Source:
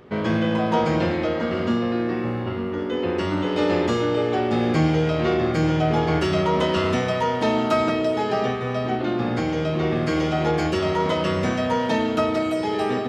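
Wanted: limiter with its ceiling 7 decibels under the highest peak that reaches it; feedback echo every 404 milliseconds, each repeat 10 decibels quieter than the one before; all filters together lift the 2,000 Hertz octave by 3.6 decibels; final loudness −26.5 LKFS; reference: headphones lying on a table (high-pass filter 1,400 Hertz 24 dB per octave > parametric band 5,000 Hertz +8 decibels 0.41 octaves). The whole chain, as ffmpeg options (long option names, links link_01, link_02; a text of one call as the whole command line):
ffmpeg -i in.wav -af "equalizer=frequency=2000:width_type=o:gain=5,alimiter=limit=-14.5dB:level=0:latency=1,highpass=frequency=1400:width=0.5412,highpass=frequency=1400:width=1.3066,equalizer=frequency=5000:width_type=o:width=0.41:gain=8,aecho=1:1:404|808|1212|1616:0.316|0.101|0.0324|0.0104,volume=3.5dB" out.wav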